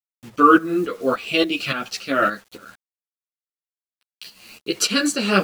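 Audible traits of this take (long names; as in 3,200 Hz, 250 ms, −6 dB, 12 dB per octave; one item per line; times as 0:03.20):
a quantiser's noise floor 8 bits, dither none
tremolo saw up 3.5 Hz, depth 70%
a shimmering, thickened sound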